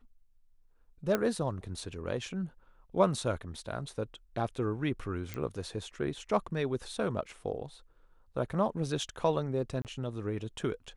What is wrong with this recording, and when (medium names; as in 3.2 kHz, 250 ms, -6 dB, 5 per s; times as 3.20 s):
1.15 s: pop -14 dBFS
5.34 s: pop -22 dBFS
9.82–9.85 s: dropout 28 ms